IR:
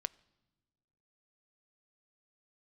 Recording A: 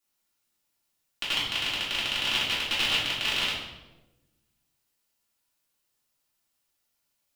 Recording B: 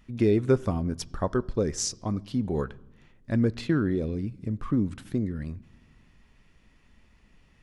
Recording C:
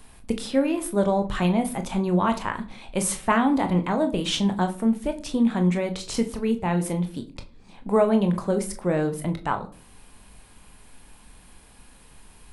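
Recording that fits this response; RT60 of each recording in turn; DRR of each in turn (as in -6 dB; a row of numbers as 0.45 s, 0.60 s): B; 1.1 s, no single decay rate, 0.45 s; -9.5 dB, 19.0 dB, 6.0 dB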